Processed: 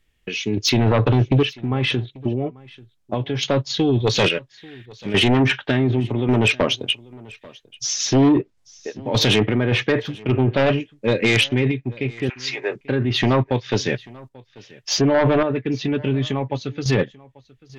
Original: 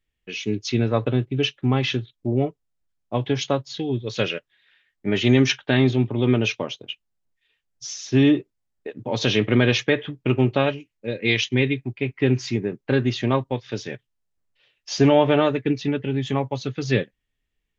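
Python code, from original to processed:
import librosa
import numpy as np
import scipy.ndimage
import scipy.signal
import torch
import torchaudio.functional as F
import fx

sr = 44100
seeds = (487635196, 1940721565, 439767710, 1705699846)

p1 = fx.env_lowpass_down(x, sr, base_hz=1700.0, full_db=-14.0)
p2 = fx.highpass(p1, sr, hz=fx.line((12.28, 1200.0), (12.75, 470.0)), slope=24, at=(12.28, 12.75), fade=0.02)
p3 = fx.over_compress(p2, sr, threshold_db=-24.0, ratio=-0.5)
p4 = p2 + (p3 * 10.0 ** (0.0 / 20.0))
p5 = fx.tremolo_random(p4, sr, seeds[0], hz=3.5, depth_pct=80)
p6 = fx.fold_sine(p5, sr, drive_db=9, ceiling_db=-3.5)
p7 = p6 + fx.echo_single(p6, sr, ms=839, db=-23.0, dry=0)
y = p7 * 10.0 ** (-7.5 / 20.0)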